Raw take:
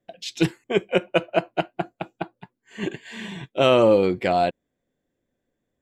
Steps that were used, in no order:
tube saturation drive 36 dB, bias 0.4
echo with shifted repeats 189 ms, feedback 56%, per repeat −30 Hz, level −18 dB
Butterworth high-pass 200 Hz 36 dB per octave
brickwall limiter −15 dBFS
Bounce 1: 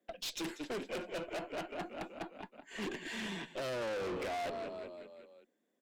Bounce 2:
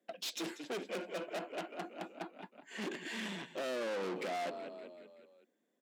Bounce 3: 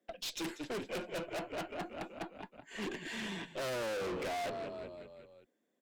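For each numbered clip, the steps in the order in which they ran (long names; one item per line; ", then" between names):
echo with shifted repeats, then brickwall limiter, then Butterworth high-pass, then tube saturation
brickwall limiter, then echo with shifted repeats, then tube saturation, then Butterworth high-pass
Butterworth high-pass, then echo with shifted repeats, then tube saturation, then brickwall limiter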